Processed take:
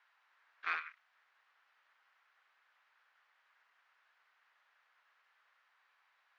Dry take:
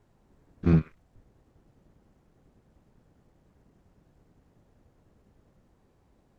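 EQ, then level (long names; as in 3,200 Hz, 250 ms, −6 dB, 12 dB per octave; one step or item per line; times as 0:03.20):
high-pass filter 1,400 Hz 24 dB per octave
high-frequency loss of the air 220 metres
high-shelf EQ 3,300 Hz −7.5 dB
+12.5 dB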